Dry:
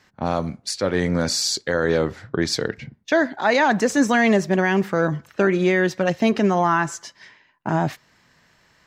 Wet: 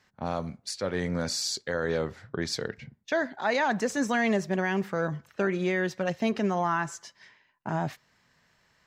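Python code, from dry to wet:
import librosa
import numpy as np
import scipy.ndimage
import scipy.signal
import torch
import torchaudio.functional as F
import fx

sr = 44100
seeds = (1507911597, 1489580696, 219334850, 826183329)

y = fx.peak_eq(x, sr, hz=310.0, db=-5.0, octaves=0.31)
y = F.gain(torch.from_numpy(y), -8.0).numpy()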